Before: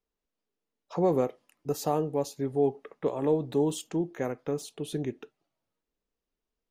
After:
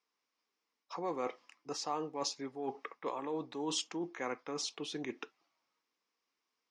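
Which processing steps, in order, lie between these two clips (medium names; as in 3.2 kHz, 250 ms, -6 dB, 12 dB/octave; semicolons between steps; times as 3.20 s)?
reverse; compression 6:1, threshold -33 dBFS, peak gain reduction 13 dB; reverse; cabinet simulation 380–6600 Hz, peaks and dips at 420 Hz -7 dB, 610 Hz -8 dB, 1.1 kHz +7 dB, 2.2 kHz +6 dB, 5.3 kHz +8 dB; trim +4.5 dB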